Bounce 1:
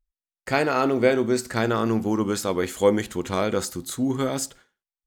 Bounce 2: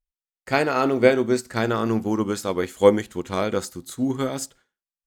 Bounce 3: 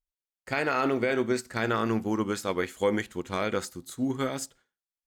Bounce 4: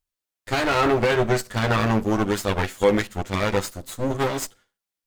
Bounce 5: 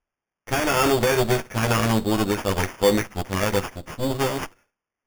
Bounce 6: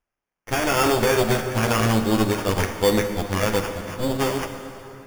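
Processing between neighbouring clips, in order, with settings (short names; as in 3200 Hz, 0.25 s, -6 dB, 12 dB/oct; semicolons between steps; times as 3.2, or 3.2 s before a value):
upward expander 1.5:1, over -38 dBFS; gain +4.5 dB
dynamic EQ 2000 Hz, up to +7 dB, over -38 dBFS, Q 0.91; limiter -10.5 dBFS, peak gain reduction 11 dB; gain -5 dB
minimum comb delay 9.9 ms; gain +7.5 dB
sample-and-hold 11×
plate-style reverb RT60 3.3 s, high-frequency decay 0.7×, DRR 6.5 dB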